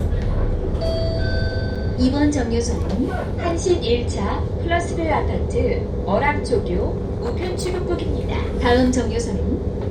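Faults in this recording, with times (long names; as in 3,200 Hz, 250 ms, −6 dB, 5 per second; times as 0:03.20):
0:01.75–0:01.76: drop-out 5.7 ms
0:06.95–0:07.82: clipping −19 dBFS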